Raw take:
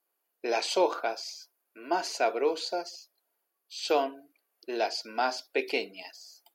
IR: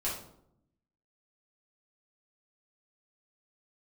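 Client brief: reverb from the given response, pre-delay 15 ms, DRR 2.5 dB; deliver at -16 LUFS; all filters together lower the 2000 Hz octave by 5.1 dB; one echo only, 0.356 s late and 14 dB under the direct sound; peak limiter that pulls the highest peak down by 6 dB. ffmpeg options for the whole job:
-filter_complex "[0:a]equalizer=f=2k:t=o:g=-7.5,alimiter=limit=-20.5dB:level=0:latency=1,aecho=1:1:356:0.2,asplit=2[a][b];[1:a]atrim=start_sample=2205,adelay=15[c];[b][c]afir=irnorm=-1:irlink=0,volume=-7.5dB[d];[a][d]amix=inputs=2:normalize=0,volume=15.5dB"

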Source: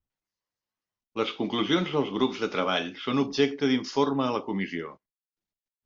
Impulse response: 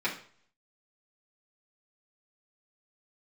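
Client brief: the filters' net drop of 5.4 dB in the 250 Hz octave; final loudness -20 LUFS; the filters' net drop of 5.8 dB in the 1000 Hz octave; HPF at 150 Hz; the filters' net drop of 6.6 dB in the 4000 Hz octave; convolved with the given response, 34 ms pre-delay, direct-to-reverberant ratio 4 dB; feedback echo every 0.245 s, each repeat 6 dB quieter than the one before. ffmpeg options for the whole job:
-filter_complex "[0:a]highpass=150,equalizer=f=250:t=o:g=-5.5,equalizer=f=1k:t=o:g=-6.5,equalizer=f=4k:t=o:g=-8.5,aecho=1:1:245|490|735|980|1225|1470:0.501|0.251|0.125|0.0626|0.0313|0.0157,asplit=2[a][b];[1:a]atrim=start_sample=2205,adelay=34[c];[b][c]afir=irnorm=-1:irlink=0,volume=-13dB[d];[a][d]amix=inputs=2:normalize=0,volume=9.5dB"

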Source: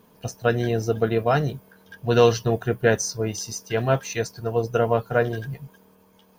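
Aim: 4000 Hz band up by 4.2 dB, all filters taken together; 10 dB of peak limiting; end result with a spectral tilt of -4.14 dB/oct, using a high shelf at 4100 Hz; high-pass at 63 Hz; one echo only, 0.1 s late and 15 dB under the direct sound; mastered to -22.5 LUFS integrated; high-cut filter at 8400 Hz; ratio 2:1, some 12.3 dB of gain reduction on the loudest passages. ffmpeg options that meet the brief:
-af "highpass=63,lowpass=8.4k,equalizer=f=4k:t=o:g=3,highshelf=f=4.1k:g=4.5,acompressor=threshold=-34dB:ratio=2,alimiter=level_in=1dB:limit=-24dB:level=0:latency=1,volume=-1dB,aecho=1:1:100:0.178,volume=13.5dB"

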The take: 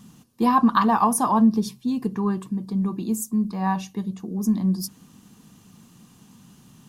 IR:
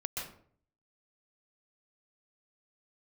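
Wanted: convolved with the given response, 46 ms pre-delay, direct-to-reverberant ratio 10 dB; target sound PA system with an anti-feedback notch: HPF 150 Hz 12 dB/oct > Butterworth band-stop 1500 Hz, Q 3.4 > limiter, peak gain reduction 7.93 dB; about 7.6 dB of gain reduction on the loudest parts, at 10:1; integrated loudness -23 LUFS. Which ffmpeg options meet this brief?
-filter_complex "[0:a]acompressor=threshold=-20dB:ratio=10,asplit=2[a][b];[1:a]atrim=start_sample=2205,adelay=46[c];[b][c]afir=irnorm=-1:irlink=0,volume=-12.5dB[d];[a][d]amix=inputs=2:normalize=0,highpass=150,asuperstop=centerf=1500:order=8:qfactor=3.4,volume=6.5dB,alimiter=limit=-14.5dB:level=0:latency=1"

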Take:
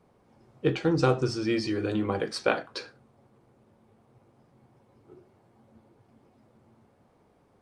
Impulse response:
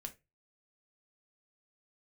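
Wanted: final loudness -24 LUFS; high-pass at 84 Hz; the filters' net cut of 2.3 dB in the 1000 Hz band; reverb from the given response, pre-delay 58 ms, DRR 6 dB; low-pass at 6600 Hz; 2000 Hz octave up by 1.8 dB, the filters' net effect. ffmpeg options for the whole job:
-filter_complex "[0:a]highpass=84,lowpass=6.6k,equalizer=f=1k:t=o:g=-5,equalizer=f=2k:t=o:g=4.5,asplit=2[a][b];[1:a]atrim=start_sample=2205,adelay=58[c];[b][c]afir=irnorm=-1:irlink=0,volume=-2dB[d];[a][d]amix=inputs=2:normalize=0,volume=3.5dB"

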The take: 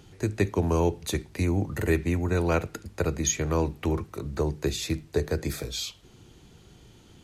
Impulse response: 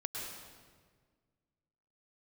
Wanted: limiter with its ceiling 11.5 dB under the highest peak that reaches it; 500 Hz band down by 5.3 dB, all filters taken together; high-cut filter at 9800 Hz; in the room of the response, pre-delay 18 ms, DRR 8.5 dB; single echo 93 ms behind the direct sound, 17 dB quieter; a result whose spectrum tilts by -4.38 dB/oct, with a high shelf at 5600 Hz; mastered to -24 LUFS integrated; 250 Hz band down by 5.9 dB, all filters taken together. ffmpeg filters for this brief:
-filter_complex "[0:a]lowpass=9.8k,equalizer=f=250:t=o:g=-7.5,equalizer=f=500:t=o:g=-4,highshelf=f=5.6k:g=4,alimiter=limit=-23dB:level=0:latency=1,aecho=1:1:93:0.141,asplit=2[a][b];[1:a]atrim=start_sample=2205,adelay=18[c];[b][c]afir=irnorm=-1:irlink=0,volume=-10dB[d];[a][d]amix=inputs=2:normalize=0,volume=9.5dB"

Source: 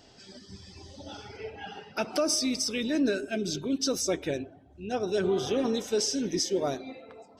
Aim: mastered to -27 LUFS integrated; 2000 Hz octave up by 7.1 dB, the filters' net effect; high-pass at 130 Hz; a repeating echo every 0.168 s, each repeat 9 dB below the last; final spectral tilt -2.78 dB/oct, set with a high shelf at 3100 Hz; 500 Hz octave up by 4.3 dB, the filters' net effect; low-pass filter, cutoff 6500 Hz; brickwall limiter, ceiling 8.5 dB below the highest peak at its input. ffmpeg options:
-af "highpass=130,lowpass=6.5k,equalizer=f=500:t=o:g=5,equalizer=f=2k:t=o:g=7.5,highshelf=f=3.1k:g=5,alimiter=limit=-20dB:level=0:latency=1,aecho=1:1:168|336|504|672:0.355|0.124|0.0435|0.0152,volume=2dB"

